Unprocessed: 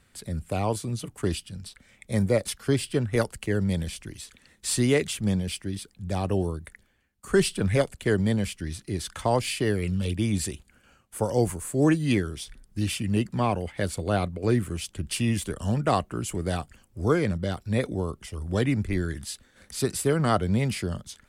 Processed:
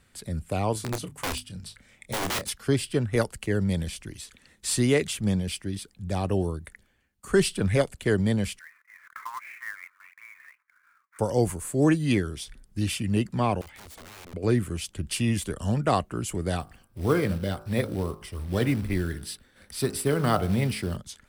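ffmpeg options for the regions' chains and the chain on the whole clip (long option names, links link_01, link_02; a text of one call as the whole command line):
ffmpeg -i in.wav -filter_complex "[0:a]asettb=1/sr,asplit=3[link_01][link_02][link_03];[link_01]atrim=end=0.734[link_04];[link_02]atrim=start=0.73:end=2.49,asetpts=PTS-STARTPTS,afade=type=in:duration=0.004:curve=qsin,afade=type=out:start_time=1.756:duration=0.004:curve=qsin,aeval=exprs='(mod(14.1*val(0)+1,2)-1)/14.1':channel_layout=same,bandreject=frequency=50:width_type=h:width=6,bandreject=frequency=100:width_type=h:width=6,bandreject=frequency=150:width_type=h:width=6,bandreject=frequency=200:width_type=h:width=6,bandreject=frequency=250:width_type=h:width=6,asplit=2[link_05][link_06];[link_06]adelay=28,volume=-11dB[link_07];[link_05][link_07]amix=inputs=2:normalize=0,atrim=end_sample=77616[link_08];[link_03]atrim=start=2.486[link_09];[link_04][link_08]acrossfade=duration=0.004:curve1=hsin:curve2=qsin[link_10];[link_10][link_09]acrossfade=duration=0.004:curve1=qsin:curve2=hsin,asettb=1/sr,asplit=3[link_11][link_12][link_13];[link_11]atrim=end=8.594[link_14];[link_12]atrim=start=8.59:end=11.19,asetpts=PTS-STARTPTS,afade=type=in:duration=0.004:curve=qsin,afade=type=out:start_time=2.596:duration=0.004:curve=qsin,asuperpass=centerf=1500:order=12:qfactor=1.2,acrusher=bits=3:mode=log:mix=0:aa=0.000001[link_15];[link_13]atrim=start=11.186[link_16];[link_14][link_15]acrossfade=duration=0.004:curve1=hsin:curve2=qsin[link_17];[link_17][link_16]acrossfade=duration=0.004:curve1=qsin:curve2=hsin,asettb=1/sr,asplit=3[link_18][link_19][link_20];[link_18]atrim=end=13.614[link_21];[link_19]atrim=start=13.61:end=14.34,asetpts=PTS-STARTPTS,afade=type=in:duration=0.004:curve=qsin,afade=type=out:start_time=0.726:duration=0.004:curve=qsin,acompressor=threshold=-38dB:ratio=10:attack=3.2:release=140:knee=1:detection=peak,aeval=exprs='(mod(100*val(0)+1,2)-1)/100':channel_layout=same[link_22];[link_20]atrim=start=14.336[link_23];[link_21][link_22]acrossfade=duration=0.004:curve1=hsin:curve2=qsin[link_24];[link_24][link_23]acrossfade=duration=0.004:curve1=qsin:curve2=hsin,asettb=1/sr,asplit=3[link_25][link_26][link_27];[link_25]atrim=end=16.604[link_28];[link_26]atrim=start=16.6:end=20.97,asetpts=PTS-STARTPTS,afade=type=in:duration=0.004:curve=qsin,afade=type=out:start_time=4.366:duration=0.004:curve=qsin,bandreject=frequency=53.09:width_type=h:width=4,bandreject=frequency=106.18:width_type=h:width=4,bandreject=frequency=159.27:width_type=h:width=4,bandreject=frequency=212.36:width_type=h:width=4,bandreject=frequency=265.45:width_type=h:width=4,bandreject=frequency=318.54:width_type=h:width=4,bandreject=frequency=371.63:width_type=h:width=4,bandreject=frequency=424.72:width_type=h:width=4,bandreject=frequency=477.81:width_type=h:width=4,bandreject=frequency=530.9:width_type=h:width=4,bandreject=frequency=583.99:width_type=h:width=4,bandreject=frequency=637.08:width_type=h:width=4,bandreject=frequency=690.17:width_type=h:width=4,bandreject=frequency=743.26:width_type=h:width=4,bandreject=frequency=796.35:width_type=h:width=4,bandreject=frequency=849.44:width_type=h:width=4,bandreject=frequency=902.53:width_type=h:width=4,bandreject=frequency=955.62:width_type=h:width=4,bandreject=frequency=1008.71:width_type=h:width=4,bandreject=frequency=1061.8:width_type=h:width=4,bandreject=frequency=1114.89:width_type=h:width=4,bandreject=frequency=1167.98:width_type=h:width=4,bandreject=frequency=1221.07:width_type=h:width=4,bandreject=frequency=1274.16:width_type=h:width=4,bandreject=frequency=1327.25:width_type=h:width=4,bandreject=frequency=1380.34:width_type=h:width=4,bandreject=frequency=1433.43:width_type=h:width=4,bandreject=frequency=1486.52:width_type=h:width=4,bandreject=frequency=1539.61:width_type=h:width=4,bandreject=frequency=1592.7:width_type=h:width=4,bandreject=frequency=1645.79:width_type=h:width=4,acrusher=bits=5:mode=log:mix=0:aa=0.000001,equalizer=frequency=6800:width=5.7:gain=-12[link_29];[link_27]atrim=start=20.966[link_30];[link_28][link_29]acrossfade=duration=0.004:curve1=hsin:curve2=qsin[link_31];[link_31][link_30]acrossfade=duration=0.004:curve1=qsin:curve2=hsin" out.wav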